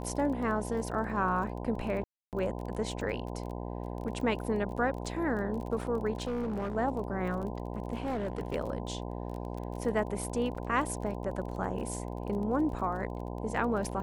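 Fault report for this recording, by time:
mains buzz 60 Hz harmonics 17 −38 dBFS
surface crackle 22 per second −38 dBFS
0:02.04–0:02.33: drop-out 288 ms
0:06.18–0:06.76: clipping −29.5 dBFS
0:07.97–0:08.56: clipping −28.5 dBFS
0:10.55–0:10.56: drop-out 5.9 ms

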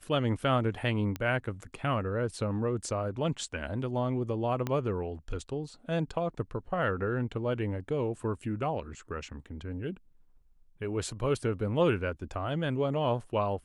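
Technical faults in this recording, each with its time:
0:01.16: click −20 dBFS
0:04.67: click −18 dBFS

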